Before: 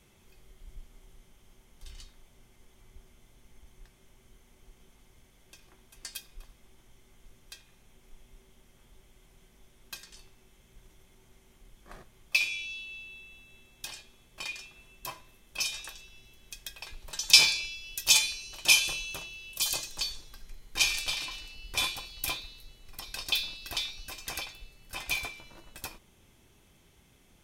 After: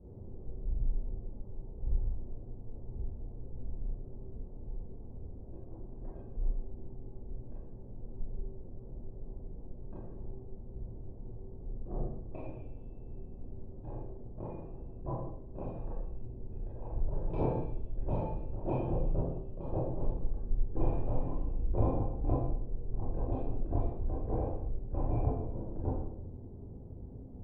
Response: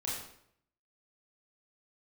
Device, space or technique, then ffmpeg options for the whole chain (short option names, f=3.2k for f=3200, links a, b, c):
next room: -filter_complex "[0:a]lowpass=f=560:w=0.5412,lowpass=f=560:w=1.3066[a];[1:a]atrim=start_sample=2205[b];[a][b]afir=irnorm=-1:irlink=0,volume=13dB"